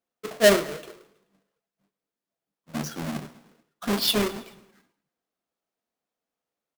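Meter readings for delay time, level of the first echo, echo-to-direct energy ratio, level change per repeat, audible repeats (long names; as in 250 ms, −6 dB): 108 ms, −20.0 dB, −18.5 dB, −5.5 dB, 3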